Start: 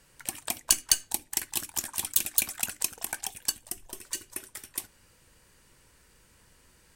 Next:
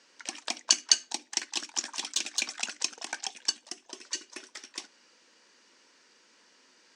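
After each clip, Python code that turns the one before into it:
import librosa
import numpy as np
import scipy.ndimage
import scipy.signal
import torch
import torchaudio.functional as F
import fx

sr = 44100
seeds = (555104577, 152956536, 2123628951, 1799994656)

y = scipy.signal.sosfilt(scipy.signal.ellip(3, 1.0, 40, [250.0, 5800.0], 'bandpass', fs=sr, output='sos'), x)
y = fx.high_shelf(y, sr, hz=3700.0, db=9.0)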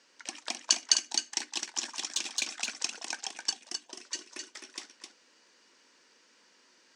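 y = x + 10.0 ** (-6.0 / 20.0) * np.pad(x, (int(260 * sr / 1000.0), 0))[:len(x)]
y = y * 10.0 ** (-2.5 / 20.0)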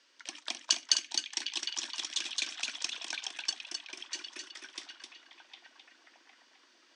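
y = fx.cabinet(x, sr, low_hz=260.0, low_slope=24, high_hz=9100.0, hz=(460.0, 800.0, 3400.0, 7200.0), db=(-7, -5, 6, -5))
y = fx.echo_stepped(y, sr, ms=757, hz=2700.0, octaves=-0.7, feedback_pct=70, wet_db=-5)
y = y * 10.0 ** (-2.5 / 20.0)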